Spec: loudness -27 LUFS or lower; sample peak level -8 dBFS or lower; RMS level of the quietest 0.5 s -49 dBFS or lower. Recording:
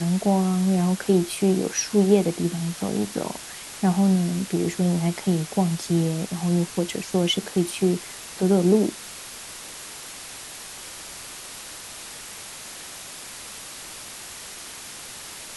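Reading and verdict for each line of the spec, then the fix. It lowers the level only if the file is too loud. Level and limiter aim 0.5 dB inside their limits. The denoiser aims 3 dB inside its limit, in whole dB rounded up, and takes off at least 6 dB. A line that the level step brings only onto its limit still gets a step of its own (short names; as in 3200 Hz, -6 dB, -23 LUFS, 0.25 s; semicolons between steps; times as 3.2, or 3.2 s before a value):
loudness -23.0 LUFS: fail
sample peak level -6.0 dBFS: fail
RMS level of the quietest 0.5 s -39 dBFS: fail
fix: denoiser 9 dB, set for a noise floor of -39 dBFS; gain -4.5 dB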